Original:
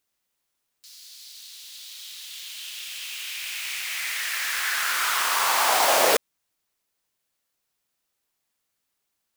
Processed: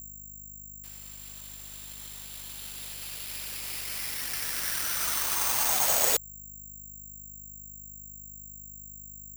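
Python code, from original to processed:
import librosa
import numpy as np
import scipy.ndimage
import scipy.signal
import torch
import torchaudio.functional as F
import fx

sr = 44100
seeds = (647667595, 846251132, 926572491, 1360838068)

y = fx.add_hum(x, sr, base_hz=50, snr_db=11)
y = fx.dereverb_blind(y, sr, rt60_s=0.56)
y = (np.kron(y[::6], np.eye(6)[0]) * 6)[:len(y)]
y = y * librosa.db_to_amplitude(-11.5)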